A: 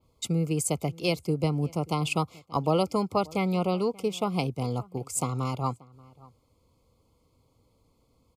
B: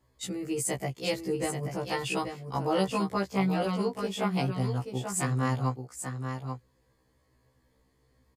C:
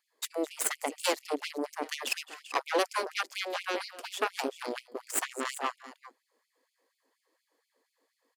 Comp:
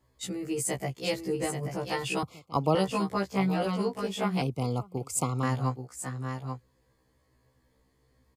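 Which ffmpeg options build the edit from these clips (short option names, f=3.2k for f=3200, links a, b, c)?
-filter_complex "[0:a]asplit=2[a][b];[1:a]asplit=3[c][d][e];[c]atrim=end=2.232[f];[a]atrim=start=2.228:end=2.752[g];[d]atrim=start=2.748:end=4.422[h];[b]atrim=start=4.418:end=5.432[i];[e]atrim=start=5.428[j];[f][g]acrossfade=d=0.004:c1=hsin:c2=hsin[k];[k][h]acrossfade=d=0.004:c1=hsin:c2=hsin[l];[l][i]acrossfade=d=0.004:c1=hsin:c2=hsin[m];[m][j]acrossfade=d=0.004:c1=hsin:c2=hsin"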